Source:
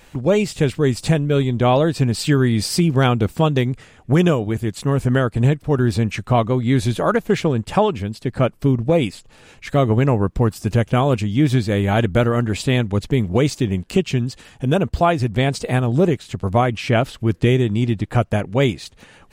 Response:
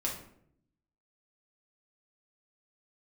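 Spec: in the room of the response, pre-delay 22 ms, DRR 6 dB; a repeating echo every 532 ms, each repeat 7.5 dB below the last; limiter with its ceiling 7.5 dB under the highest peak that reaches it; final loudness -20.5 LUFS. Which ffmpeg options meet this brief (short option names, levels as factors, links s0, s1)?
-filter_complex "[0:a]alimiter=limit=0.237:level=0:latency=1,aecho=1:1:532|1064|1596|2128|2660:0.422|0.177|0.0744|0.0312|0.0131,asplit=2[s0][s1];[1:a]atrim=start_sample=2205,adelay=22[s2];[s1][s2]afir=irnorm=-1:irlink=0,volume=0.316[s3];[s0][s3]amix=inputs=2:normalize=0,volume=1.06"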